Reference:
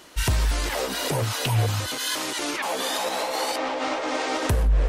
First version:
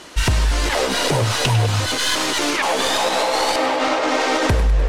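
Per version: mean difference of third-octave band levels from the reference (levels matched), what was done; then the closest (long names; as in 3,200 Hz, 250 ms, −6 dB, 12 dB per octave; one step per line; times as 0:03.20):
2.5 dB: stylus tracing distortion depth 0.11 ms
low-pass filter 9,400 Hz 12 dB per octave
downward compressor 3 to 1, threshold −24 dBFS, peak gain reduction 6.5 dB
on a send: feedback echo with a high-pass in the loop 101 ms, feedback 61%, level −11.5 dB
on the sum: level +9 dB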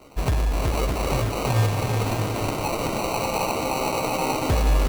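8.0 dB: low-pass filter 8,900 Hz 24 dB per octave
sample-rate reduction 1,700 Hz, jitter 0%
bouncing-ball delay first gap 370 ms, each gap 0.65×, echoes 5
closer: first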